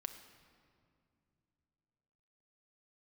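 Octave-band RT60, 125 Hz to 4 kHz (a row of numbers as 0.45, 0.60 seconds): 3.7, 3.4, 2.8, 2.2, 1.9, 1.5 seconds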